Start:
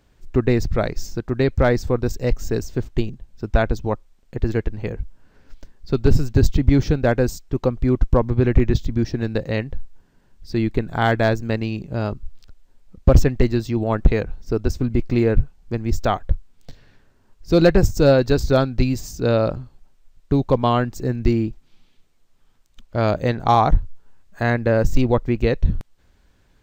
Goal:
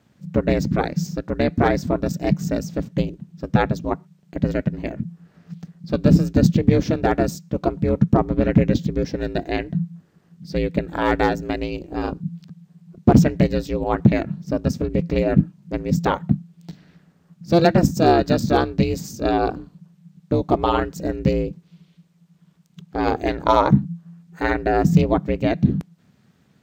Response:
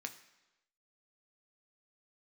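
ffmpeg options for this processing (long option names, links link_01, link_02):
-filter_complex "[0:a]aeval=exprs='val(0)*sin(2*PI*170*n/s)':channel_layout=same,highpass=61,asplit=2[link_01][link_02];[1:a]atrim=start_sample=2205,afade=type=out:start_time=0.18:duration=0.01,atrim=end_sample=8379[link_03];[link_02][link_03]afir=irnorm=-1:irlink=0,volume=-15dB[link_04];[link_01][link_04]amix=inputs=2:normalize=0,volume=1.5dB"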